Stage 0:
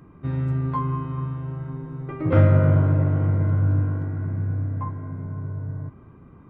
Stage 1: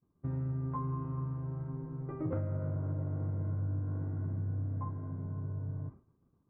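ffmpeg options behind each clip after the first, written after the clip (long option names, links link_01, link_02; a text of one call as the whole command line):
ffmpeg -i in.wav -af "agate=range=-33dB:threshold=-35dB:ratio=3:detection=peak,lowpass=1100,acompressor=threshold=-24dB:ratio=16,volume=-7dB" out.wav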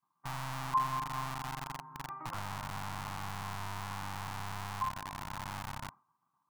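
ffmpeg -i in.wav -filter_complex "[0:a]equalizer=frequency=125:width_type=o:width=1:gain=6,equalizer=frequency=250:width_type=o:width=1:gain=-5,equalizer=frequency=500:width_type=o:width=1:gain=-7,equalizer=frequency=1000:width_type=o:width=1:gain=5,acrossover=split=180|570[link_01][link_02][link_03];[link_01]acrusher=bits=3:dc=4:mix=0:aa=0.000001[link_04];[link_04][link_02][link_03]amix=inputs=3:normalize=0,lowshelf=frequency=660:width_type=q:width=3:gain=-10.5,volume=1dB" out.wav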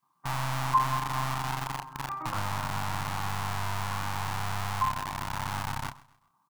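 ffmpeg -i in.wav -filter_complex "[0:a]asplit=2[link_01][link_02];[link_02]adelay=29,volume=-7dB[link_03];[link_01][link_03]amix=inputs=2:normalize=0,aecho=1:1:130|260|390:0.0944|0.0349|0.0129,volume=7dB" out.wav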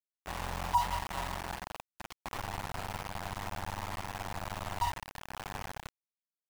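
ffmpeg -i in.wav -af "afreqshift=-88,afftfilt=real='re*gte(hypot(re,im),0.0355)':imag='im*gte(hypot(re,im),0.0355)':win_size=1024:overlap=0.75,aeval=exprs='val(0)*gte(abs(val(0)),0.0376)':channel_layout=same,volume=-4dB" out.wav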